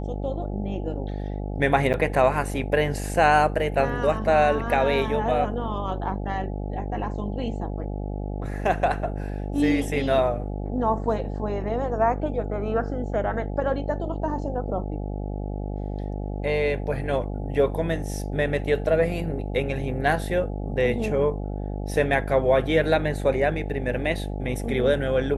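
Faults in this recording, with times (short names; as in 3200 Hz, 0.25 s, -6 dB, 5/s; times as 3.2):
buzz 50 Hz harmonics 17 -30 dBFS
1.93–1.94 gap 9.1 ms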